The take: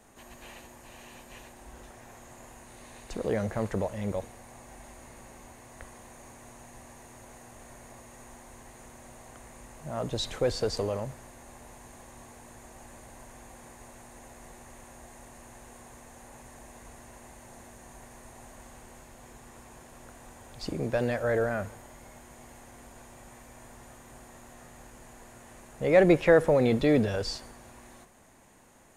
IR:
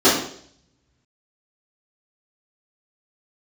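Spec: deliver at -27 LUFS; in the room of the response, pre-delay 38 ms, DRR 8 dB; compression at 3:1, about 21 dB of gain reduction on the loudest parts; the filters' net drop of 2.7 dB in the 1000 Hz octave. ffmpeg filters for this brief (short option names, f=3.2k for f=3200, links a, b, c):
-filter_complex "[0:a]equalizer=f=1k:t=o:g=-4,acompressor=threshold=-46dB:ratio=3,asplit=2[a][b];[1:a]atrim=start_sample=2205,adelay=38[c];[b][c]afir=irnorm=-1:irlink=0,volume=-32dB[d];[a][d]amix=inputs=2:normalize=0,volume=20.5dB"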